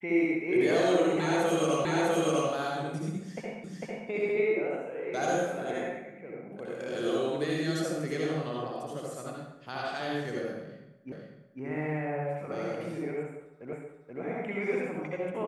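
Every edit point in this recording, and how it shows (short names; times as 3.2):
1.85 repeat of the last 0.65 s
3.64 repeat of the last 0.45 s
11.12 repeat of the last 0.5 s
13.73 repeat of the last 0.48 s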